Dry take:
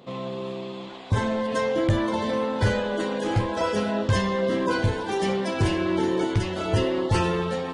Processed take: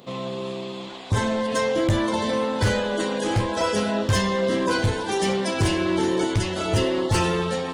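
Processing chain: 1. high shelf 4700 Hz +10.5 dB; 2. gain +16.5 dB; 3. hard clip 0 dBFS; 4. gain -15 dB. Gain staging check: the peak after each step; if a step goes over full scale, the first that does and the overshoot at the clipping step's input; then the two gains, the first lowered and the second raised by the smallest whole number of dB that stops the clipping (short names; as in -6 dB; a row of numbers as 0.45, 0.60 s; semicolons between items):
-10.0, +6.5, 0.0, -15.0 dBFS; step 2, 6.5 dB; step 2 +9.5 dB, step 4 -8 dB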